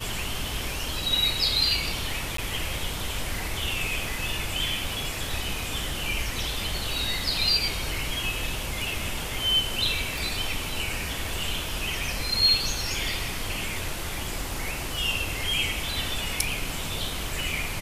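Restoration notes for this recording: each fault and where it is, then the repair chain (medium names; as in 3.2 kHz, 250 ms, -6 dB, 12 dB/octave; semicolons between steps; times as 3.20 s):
2.37–2.38 s: dropout 13 ms
10.18 s: pop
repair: de-click; interpolate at 2.37 s, 13 ms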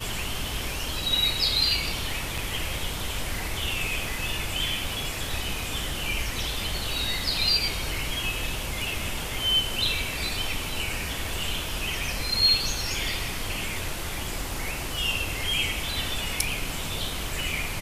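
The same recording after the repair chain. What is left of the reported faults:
nothing left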